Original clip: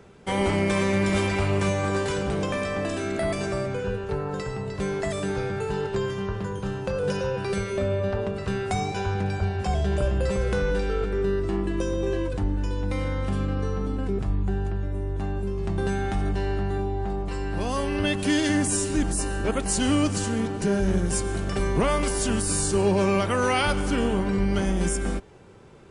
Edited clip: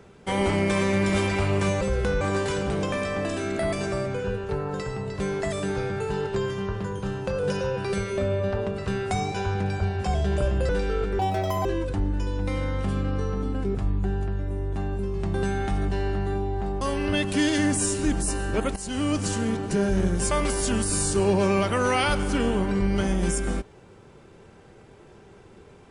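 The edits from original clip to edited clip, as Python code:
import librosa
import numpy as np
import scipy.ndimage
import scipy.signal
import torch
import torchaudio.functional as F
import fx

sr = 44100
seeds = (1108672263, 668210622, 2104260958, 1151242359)

y = fx.edit(x, sr, fx.move(start_s=10.29, length_s=0.4, to_s=1.81),
    fx.speed_span(start_s=11.19, length_s=0.9, speed=1.95),
    fx.cut(start_s=17.25, length_s=0.47),
    fx.fade_in_from(start_s=19.67, length_s=0.51, floor_db=-14.0),
    fx.cut(start_s=21.22, length_s=0.67), tone=tone)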